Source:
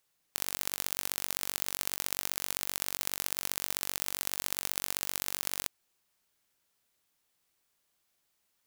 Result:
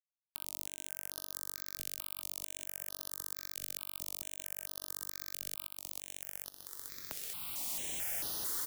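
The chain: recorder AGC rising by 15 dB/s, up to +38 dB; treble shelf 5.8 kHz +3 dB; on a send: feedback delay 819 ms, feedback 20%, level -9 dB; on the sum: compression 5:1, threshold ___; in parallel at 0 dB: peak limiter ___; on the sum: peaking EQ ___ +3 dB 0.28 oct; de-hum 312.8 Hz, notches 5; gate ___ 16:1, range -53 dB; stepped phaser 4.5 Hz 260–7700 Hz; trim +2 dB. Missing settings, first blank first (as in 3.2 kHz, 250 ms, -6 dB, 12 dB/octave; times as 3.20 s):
-41 dBFS, -22 dBFS, 310 Hz, -58 dBFS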